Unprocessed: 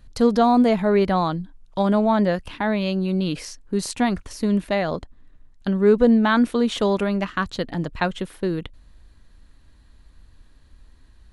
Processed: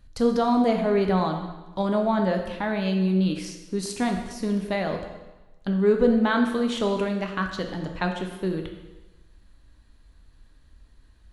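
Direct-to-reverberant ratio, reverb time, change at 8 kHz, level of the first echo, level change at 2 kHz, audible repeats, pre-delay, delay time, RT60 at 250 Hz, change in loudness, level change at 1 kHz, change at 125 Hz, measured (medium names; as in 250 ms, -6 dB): 3.5 dB, 1.1 s, -3.5 dB, no echo, -3.0 dB, no echo, 5 ms, no echo, 1.1 s, -3.5 dB, -4.0 dB, -2.0 dB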